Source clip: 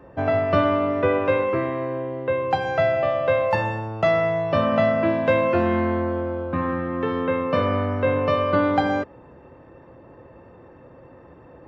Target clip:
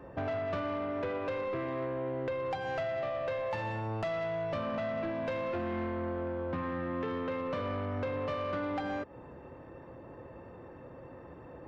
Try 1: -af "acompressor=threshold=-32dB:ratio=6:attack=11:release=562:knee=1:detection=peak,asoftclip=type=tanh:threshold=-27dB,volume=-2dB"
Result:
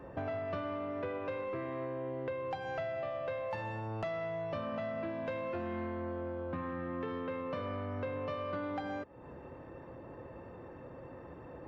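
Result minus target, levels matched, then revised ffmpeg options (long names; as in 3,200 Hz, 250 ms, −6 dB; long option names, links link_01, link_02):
downward compressor: peak gain reduction +5 dB
-af "acompressor=threshold=-26dB:ratio=6:attack=11:release=562:knee=1:detection=peak,asoftclip=type=tanh:threshold=-27dB,volume=-2dB"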